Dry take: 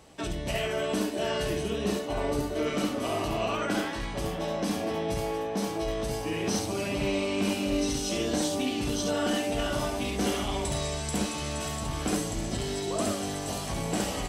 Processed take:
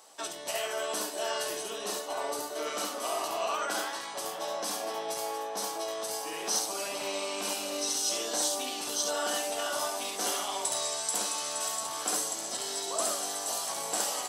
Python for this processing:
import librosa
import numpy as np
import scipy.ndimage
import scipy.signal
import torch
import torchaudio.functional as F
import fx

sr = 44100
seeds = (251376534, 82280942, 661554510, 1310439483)

y = scipy.signal.sosfilt(scipy.signal.butter(2, 1000.0, 'highpass', fs=sr, output='sos'), x)
y = fx.peak_eq(y, sr, hz=2300.0, db=-12.5, octaves=1.4)
y = y * librosa.db_to_amplitude(7.5)